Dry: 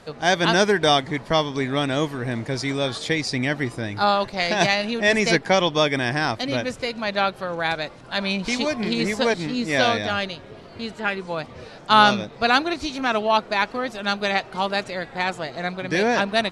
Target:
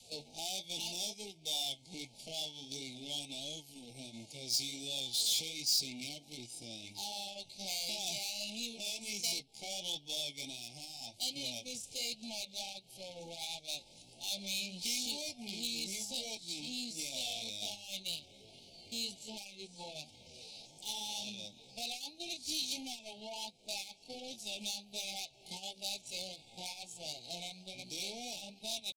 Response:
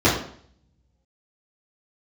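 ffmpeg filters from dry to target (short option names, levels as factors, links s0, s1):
-filter_complex "[0:a]atempo=0.57,acompressor=threshold=0.0282:ratio=6,flanger=delay=7.3:depth=6.3:regen=-57:speed=1.4:shape=triangular,acrossover=split=180|3000[s0][s1][s2];[s0]acompressor=threshold=0.00224:ratio=10[s3];[s3][s1][s2]amix=inputs=3:normalize=0,adynamicequalizer=threshold=0.002:dfrequency=430:dqfactor=1.3:tfrequency=430:tqfactor=1.3:attack=5:release=100:ratio=0.375:range=3.5:mode=cutabove:tftype=bell,asoftclip=type=tanh:threshold=0.0112,afftfilt=real='re*(1-between(b*sr/4096,910,2100))':imag='im*(1-between(b*sr/4096,910,2100))':win_size=4096:overlap=0.75,agate=range=0.398:threshold=0.00501:ratio=16:detection=peak,aexciter=amount=4.9:drive=7:freq=2900,volume=0.708"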